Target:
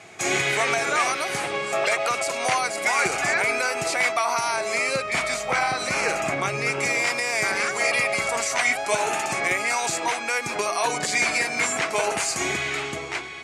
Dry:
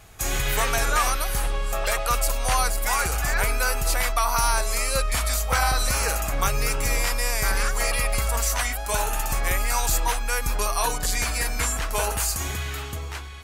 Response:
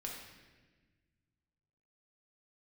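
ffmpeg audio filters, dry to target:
-filter_complex "[0:a]asettb=1/sr,asplit=3[a][b][c];[a]atrim=end=4.564[d];[b]atrim=start=4.56:end=6.8,asetpts=PTS-STARTPTS,afade=t=in:d=0.004:c=qsin,afade=t=out:st=2.236:d=0.004:c=qsin,bass=f=250:g=4,treble=f=4k:g=-4[e];[c]atrim=start=6.796[f];[d][e]acrossfade=d=0.004:c1=hsin:c2=qsin[g];[g][f]acrossfade=d=0.004:c1=qsin:c2=hsin,alimiter=limit=-16dB:level=0:latency=1:release=117,highpass=f=140:w=0.5412,highpass=f=140:w=1.3066,equalizer=f=360:t=q:w=4:g=9,equalizer=f=680:t=q:w=4:g=6,equalizer=f=2.2k:t=q:w=4:g=10,lowpass=f=8.5k:w=0.5412,lowpass=f=8.5k:w=1.3066,volume=3.5dB"

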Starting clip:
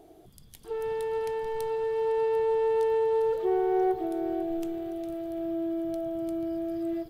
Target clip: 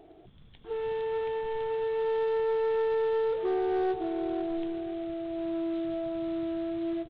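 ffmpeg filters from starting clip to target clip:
-af "aresample=8000,acrusher=bits=5:mode=log:mix=0:aa=0.000001,aresample=44100,asoftclip=type=tanh:threshold=-22.5dB"

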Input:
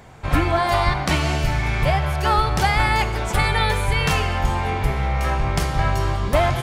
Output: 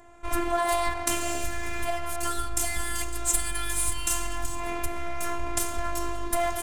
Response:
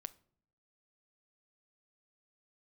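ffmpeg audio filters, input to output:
-filter_complex "[0:a]asettb=1/sr,asplit=3[a][b][c];[a]atrim=end=2.234[d];[b]atrim=start=2.23:end=4.6,asetpts=PTS-STARTPTS,afade=t=in:d=0.004:c=qsin,afade=t=out:st=2.366:d=0.004:c=qsin,equalizer=f=125:t=o:w=1:g=10,equalizer=f=500:t=o:w=1:g=-9,equalizer=f=2k:t=o:w=1:g=-4,equalizer=f=8k:t=o:w=1:g=5[e];[c]atrim=start=4.596[f];[d][e]acrossfade=d=0.004:c1=hsin:c2=qsin[g];[g][f]acrossfade=d=0.004:c1=qsin:c2=hsin,acompressor=threshold=-19dB:ratio=2.5,aexciter=amount=13.4:drive=2.2:freq=6.8k,adynamicsmooth=sensitivity=6.5:basefreq=2.7k,afftfilt=real='hypot(re,im)*cos(PI*b)':imag='0':win_size=512:overlap=0.75,volume=-2dB"

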